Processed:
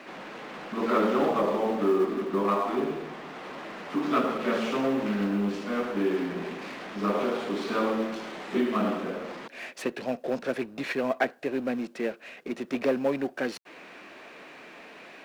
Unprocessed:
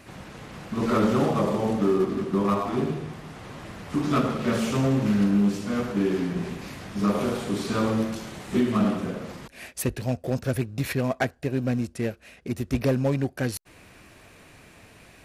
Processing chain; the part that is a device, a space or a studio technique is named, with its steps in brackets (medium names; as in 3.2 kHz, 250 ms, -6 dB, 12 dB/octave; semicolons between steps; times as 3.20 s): high-pass 160 Hz 24 dB/octave; phone line with mismatched companding (band-pass 300–3400 Hz; companding laws mixed up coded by mu)